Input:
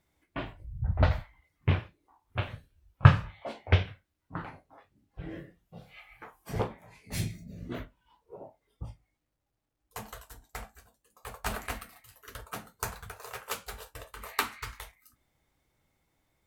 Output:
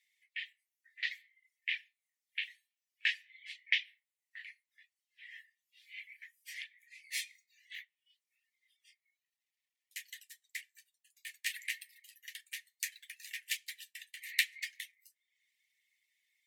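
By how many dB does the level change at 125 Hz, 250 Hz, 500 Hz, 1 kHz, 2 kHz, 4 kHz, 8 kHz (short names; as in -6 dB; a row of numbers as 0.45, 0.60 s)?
under -40 dB, under -40 dB, under -40 dB, under -40 dB, +1.0 dB, +3.0 dB, -0.5 dB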